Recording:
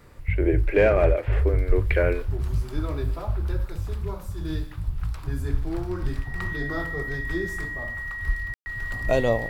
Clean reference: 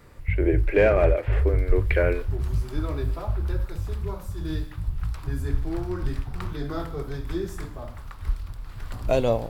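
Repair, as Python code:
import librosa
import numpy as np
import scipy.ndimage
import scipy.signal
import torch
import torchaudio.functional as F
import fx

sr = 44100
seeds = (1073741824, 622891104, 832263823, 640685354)

y = fx.fix_declick_ar(x, sr, threshold=6.5)
y = fx.notch(y, sr, hz=1900.0, q=30.0)
y = fx.fix_ambience(y, sr, seeds[0], print_start_s=0.0, print_end_s=0.5, start_s=8.54, end_s=8.66)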